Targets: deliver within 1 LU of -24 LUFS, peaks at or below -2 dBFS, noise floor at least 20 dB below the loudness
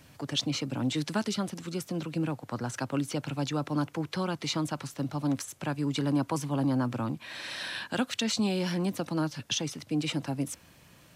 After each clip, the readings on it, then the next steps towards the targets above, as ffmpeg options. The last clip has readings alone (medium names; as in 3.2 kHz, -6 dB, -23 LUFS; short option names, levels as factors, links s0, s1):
loudness -31.5 LUFS; peak level -15.5 dBFS; loudness target -24.0 LUFS
-> -af "volume=2.37"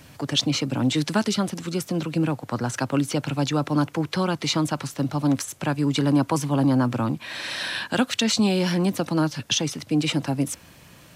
loudness -24.0 LUFS; peak level -8.0 dBFS; noise floor -50 dBFS